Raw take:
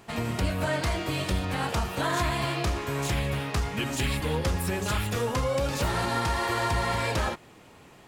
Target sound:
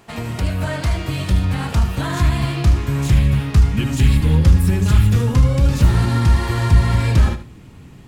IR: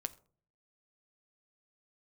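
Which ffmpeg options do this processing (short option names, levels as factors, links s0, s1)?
-filter_complex "[0:a]asubboost=boost=7:cutoff=220,asplit=2[s0][s1];[1:a]atrim=start_sample=2205,adelay=76[s2];[s1][s2]afir=irnorm=-1:irlink=0,volume=0.282[s3];[s0][s3]amix=inputs=2:normalize=0,volume=1.33"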